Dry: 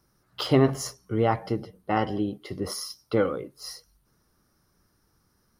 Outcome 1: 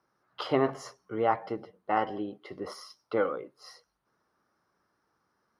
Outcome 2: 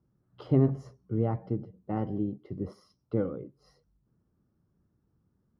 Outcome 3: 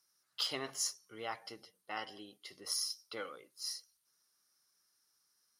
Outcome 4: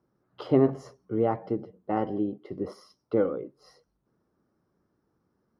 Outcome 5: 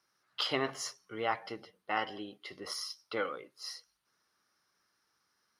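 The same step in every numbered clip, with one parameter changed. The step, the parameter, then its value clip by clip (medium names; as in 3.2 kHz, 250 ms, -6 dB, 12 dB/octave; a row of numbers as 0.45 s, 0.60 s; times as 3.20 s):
band-pass filter, frequency: 1 kHz, 140 Hz, 7.1 kHz, 360 Hz, 2.7 kHz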